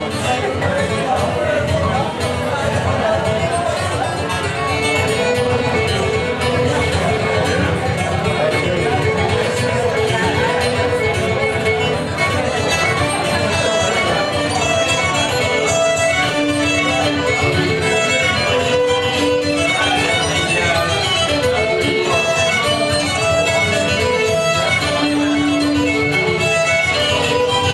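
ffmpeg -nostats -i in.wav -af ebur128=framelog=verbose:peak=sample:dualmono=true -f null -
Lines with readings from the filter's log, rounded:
Integrated loudness:
  I:         -12.9 LUFS
  Threshold: -22.9 LUFS
Loudness range:
  LRA:         2.5 LU
  Threshold: -32.9 LUFS
  LRA low:   -14.4 LUFS
  LRA high:  -11.9 LUFS
Sample peak:
  Peak:       -2.4 dBFS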